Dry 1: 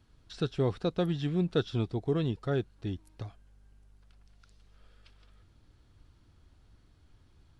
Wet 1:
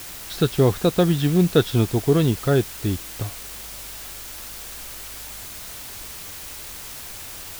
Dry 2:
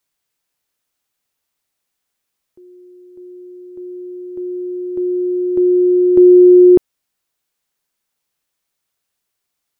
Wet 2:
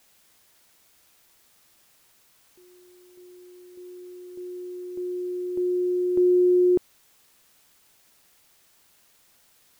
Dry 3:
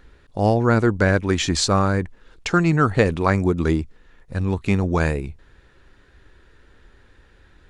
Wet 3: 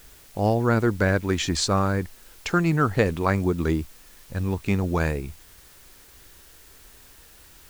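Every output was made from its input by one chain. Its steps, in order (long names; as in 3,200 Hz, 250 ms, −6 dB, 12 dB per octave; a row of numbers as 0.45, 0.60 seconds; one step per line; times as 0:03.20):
bit-depth reduction 8 bits, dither triangular
loudness normalisation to −24 LKFS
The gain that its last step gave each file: +11.5, −12.5, −3.5 decibels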